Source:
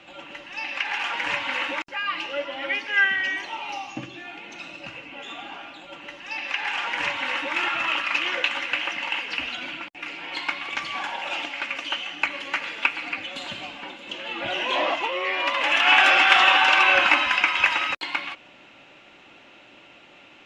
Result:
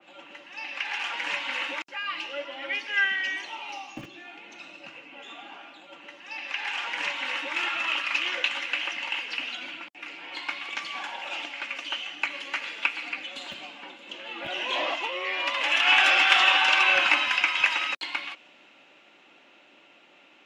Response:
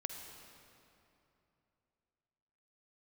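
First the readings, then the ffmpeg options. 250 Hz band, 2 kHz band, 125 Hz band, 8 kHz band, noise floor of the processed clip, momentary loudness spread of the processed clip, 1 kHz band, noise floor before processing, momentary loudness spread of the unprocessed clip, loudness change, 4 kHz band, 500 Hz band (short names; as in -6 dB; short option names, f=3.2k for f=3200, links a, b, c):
-6.5 dB, -3.5 dB, n/a, -0.5 dB, -56 dBFS, 24 LU, -5.5 dB, -50 dBFS, 21 LU, -3.0 dB, -1.5 dB, -6.0 dB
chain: -filter_complex "[0:a]acrossover=split=160|1100[a][b][c];[a]acrusher=bits=6:mix=0:aa=0.000001[d];[d][b][c]amix=inputs=3:normalize=0,adynamicequalizer=threshold=0.0316:dfrequency=2200:dqfactor=0.7:tfrequency=2200:tqfactor=0.7:attack=5:release=100:ratio=0.375:range=3:mode=boostabove:tftype=highshelf,volume=-6dB"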